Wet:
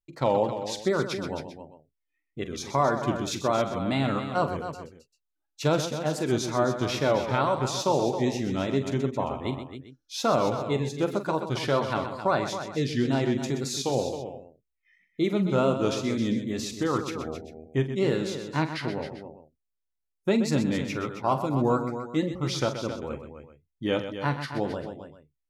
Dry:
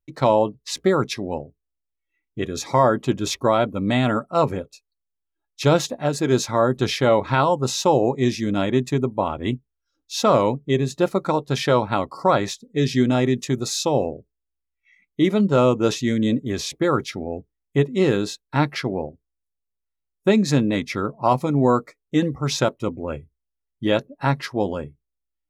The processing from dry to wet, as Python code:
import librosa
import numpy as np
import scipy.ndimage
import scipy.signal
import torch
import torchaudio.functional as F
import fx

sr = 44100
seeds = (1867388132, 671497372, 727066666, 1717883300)

y = fx.wow_flutter(x, sr, seeds[0], rate_hz=2.1, depth_cents=120.0)
y = fx.echo_multitap(y, sr, ms=(44, 126, 268, 395), db=(-12.0, -10.0, -10.0, -18.0))
y = F.gain(torch.from_numpy(y), -7.0).numpy()